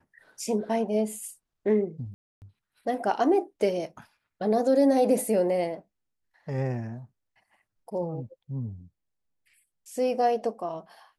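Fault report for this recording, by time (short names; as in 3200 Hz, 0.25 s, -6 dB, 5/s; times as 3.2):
2.14–2.42 gap 0.279 s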